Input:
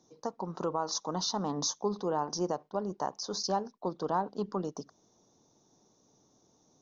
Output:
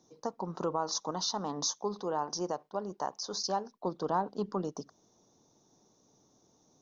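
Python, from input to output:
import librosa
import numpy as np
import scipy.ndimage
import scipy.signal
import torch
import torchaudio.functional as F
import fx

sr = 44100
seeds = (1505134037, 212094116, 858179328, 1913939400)

y = fx.low_shelf(x, sr, hz=360.0, db=-6.5, at=(1.11, 3.72))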